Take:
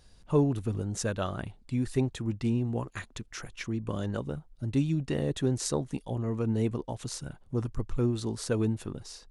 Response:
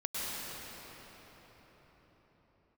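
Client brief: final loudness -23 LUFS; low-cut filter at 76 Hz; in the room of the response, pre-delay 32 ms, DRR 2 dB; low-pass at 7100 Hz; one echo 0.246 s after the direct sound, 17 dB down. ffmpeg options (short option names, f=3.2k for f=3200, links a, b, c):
-filter_complex "[0:a]highpass=76,lowpass=7.1k,aecho=1:1:246:0.141,asplit=2[a][b];[1:a]atrim=start_sample=2205,adelay=32[c];[b][c]afir=irnorm=-1:irlink=0,volume=-8dB[d];[a][d]amix=inputs=2:normalize=0,volume=6.5dB"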